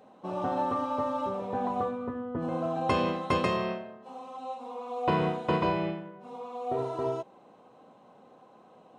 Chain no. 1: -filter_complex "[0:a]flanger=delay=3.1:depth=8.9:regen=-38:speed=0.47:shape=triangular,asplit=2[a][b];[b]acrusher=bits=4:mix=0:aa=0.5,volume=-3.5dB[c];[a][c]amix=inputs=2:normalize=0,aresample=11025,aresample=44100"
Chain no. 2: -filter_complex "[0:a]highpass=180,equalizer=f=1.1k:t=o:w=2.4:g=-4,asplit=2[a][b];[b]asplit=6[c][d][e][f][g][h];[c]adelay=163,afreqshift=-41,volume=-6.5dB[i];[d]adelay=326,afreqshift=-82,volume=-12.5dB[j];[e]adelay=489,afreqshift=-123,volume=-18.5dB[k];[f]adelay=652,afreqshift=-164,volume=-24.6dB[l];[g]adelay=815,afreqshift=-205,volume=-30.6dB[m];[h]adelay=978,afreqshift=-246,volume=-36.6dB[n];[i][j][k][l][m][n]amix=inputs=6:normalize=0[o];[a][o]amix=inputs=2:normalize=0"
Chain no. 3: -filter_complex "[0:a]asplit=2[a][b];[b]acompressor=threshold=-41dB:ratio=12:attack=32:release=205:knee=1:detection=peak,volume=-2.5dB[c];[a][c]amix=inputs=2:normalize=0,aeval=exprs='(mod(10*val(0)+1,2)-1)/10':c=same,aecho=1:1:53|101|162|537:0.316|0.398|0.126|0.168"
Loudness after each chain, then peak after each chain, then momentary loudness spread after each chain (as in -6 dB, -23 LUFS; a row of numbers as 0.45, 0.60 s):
-30.5, -33.0, -28.5 LUFS; -13.0, -16.5, -15.5 dBFS; 16, 13, 12 LU